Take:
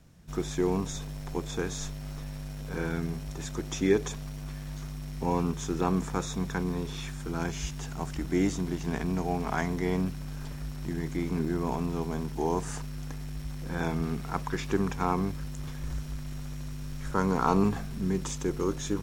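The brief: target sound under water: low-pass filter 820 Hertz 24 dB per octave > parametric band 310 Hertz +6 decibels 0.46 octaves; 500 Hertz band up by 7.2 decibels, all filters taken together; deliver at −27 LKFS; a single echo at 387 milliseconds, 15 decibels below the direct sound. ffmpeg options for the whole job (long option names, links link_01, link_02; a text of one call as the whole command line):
ffmpeg -i in.wav -af "lowpass=frequency=820:width=0.5412,lowpass=frequency=820:width=1.3066,equalizer=frequency=310:width_type=o:width=0.46:gain=6,equalizer=frequency=500:width_type=o:gain=7.5,aecho=1:1:387:0.178,volume=0.5dB" out.wav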